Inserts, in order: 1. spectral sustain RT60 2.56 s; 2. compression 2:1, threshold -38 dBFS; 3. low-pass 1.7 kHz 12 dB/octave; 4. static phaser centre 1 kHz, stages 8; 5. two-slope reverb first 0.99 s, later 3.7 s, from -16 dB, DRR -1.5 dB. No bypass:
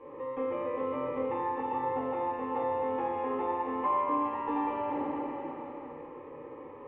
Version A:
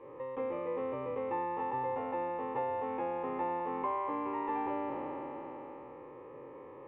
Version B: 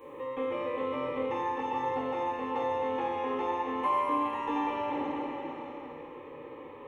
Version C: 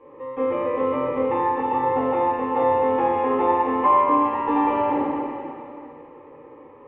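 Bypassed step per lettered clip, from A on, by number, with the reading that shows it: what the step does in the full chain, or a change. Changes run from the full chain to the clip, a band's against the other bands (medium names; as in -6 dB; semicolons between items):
5, 250 Hz band -2.5 dB; 3, 2 kHz band +4.5 dB; 2, mean gain reduction 8.0 dB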